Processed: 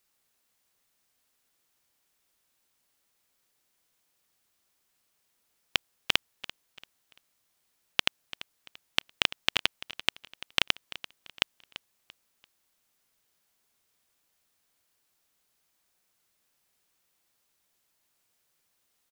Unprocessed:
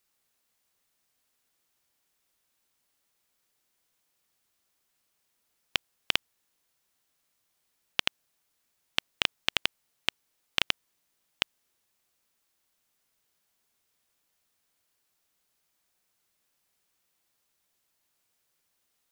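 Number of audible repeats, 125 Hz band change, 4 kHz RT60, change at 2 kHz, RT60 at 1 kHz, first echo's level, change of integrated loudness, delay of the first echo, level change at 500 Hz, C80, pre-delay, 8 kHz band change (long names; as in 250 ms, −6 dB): 2, +1.5 dB, no reverb audible, +1.5 dB, no reverb audible, −16.0 dB, +1.5 dB, 340 ms, +1.5 dB, no reverb audible, no reverb audible, +1.5 dB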